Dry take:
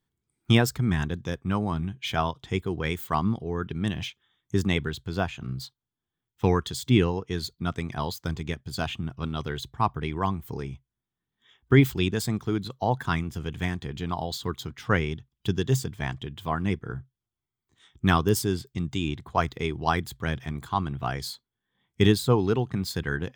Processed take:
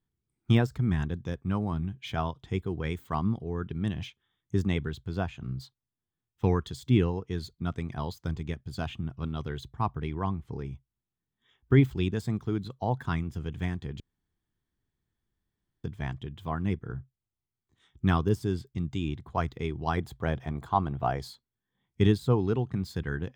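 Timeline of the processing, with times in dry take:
10.15–10.65 s: distance through air 73 m
14.00–15.84 s: room tone
19.97–21.28 s: peaking EQ 670 Hz +10 dB 1.5 oct
whole clip: de-esser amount 60%; tilt EQ -1.5 dB/octave; trim -6 dB

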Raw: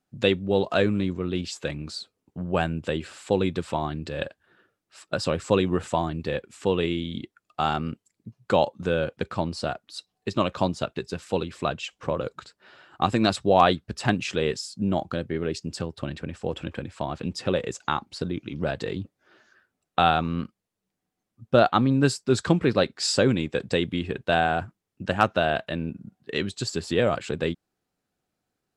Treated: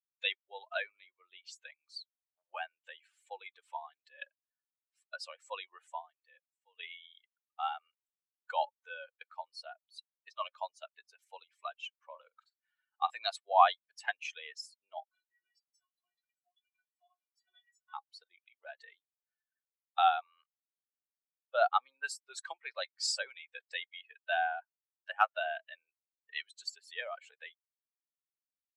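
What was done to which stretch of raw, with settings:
5.80–6.79 s: fade out quadratic, to -12.5 dB
12.06–13.10 s: flutter echo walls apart 8 m, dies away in 0.26 s
15.04–17.94 s: inharmonic resonator 350 Hz, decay 0.25 s, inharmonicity 0.008
whole clip: expander on every frequency bin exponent 2; steep high-pass 690 Hz 48 dB/octave; tilt EQ -1.5 dB/octave; trim -1 dB

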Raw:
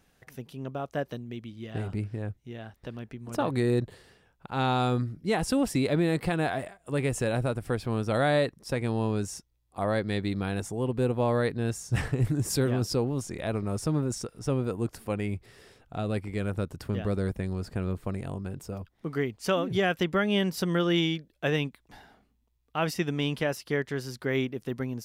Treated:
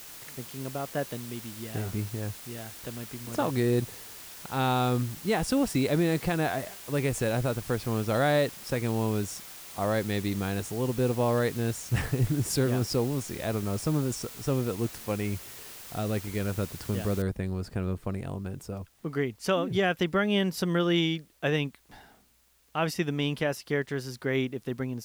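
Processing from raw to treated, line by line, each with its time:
17.22 s: noise floor step -45 dB -66 dB

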